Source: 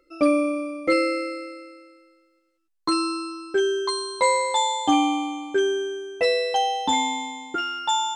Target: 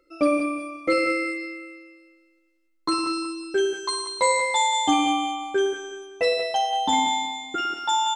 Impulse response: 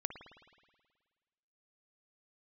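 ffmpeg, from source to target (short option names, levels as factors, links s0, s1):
-filter_complex "[0:a]asettb=1/sr,asplit=3[s0][s1][s2];[s0]atrim=end=3.134[s3];[s1]atrim=start=3.13:end=5.13,asetpts=PTS-STARTPTS,afade=t=in:d=0.004:c=qsin,afade=t=out:st=1.996:d=0.004:c=qsin,highshelf=f=9200:g=9[s4];[s2]atrim=start=5.126[s5];[s3][s4]acrossfade=d=0.004:c1=hsin:c2=qsin[s6];[s6][s5]acrossfade=d=0.004:c1=qsin:c2=hsin,aecho=1:1:185|370|555|740:0.355|0.11|0.0341|0.0106[s7];[1:a]atrim=start_sample=2205,afade=t=out:st=0.26:d=0.01,atrim=end_sample=11907[s8];[s7][s8]afir=irnorm=-1:irlink=0"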